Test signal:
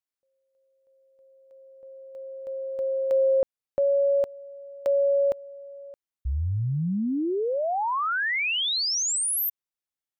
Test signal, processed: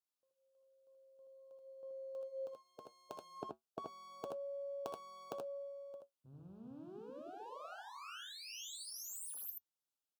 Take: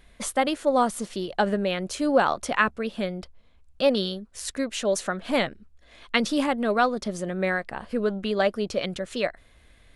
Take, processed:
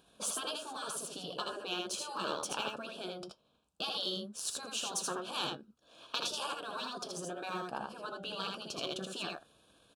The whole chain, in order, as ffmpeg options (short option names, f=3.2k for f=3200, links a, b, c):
-filter_complex "[0:a]aeval=exprs='if(lt(val(0),0),0.708*val(0),val(0))':c=same,afftfilt=real='re*lt(hypot(re,im),0.158)':imag='im*lt(hypot(re,im),0.158)':win_size=1024:overlap=0.75,highpass=170,aeval=exprs='0.251*(cos(1*acos(clip(val(0)/0.251,-1,1)))-cos(1*PI/2))+0.0112*(cos(3*acos(clip(val(0)/0.251,-1,1)))-cos(3*PI/2))':c=same,flanger=delay=6.2:depth=1.3:regen=-71:speed=0.51:shape=sinusoidal,asuperstop=centerf=2000:order=4:qfactor=1.9,asplit=2[a][b];[b]aecho=0:1:65|79:0.237|0.668[c];[a][c]amix=inputs=2:normalize=0,volume=2.5dB" -ar 48000 -c:a aac -b:a 192k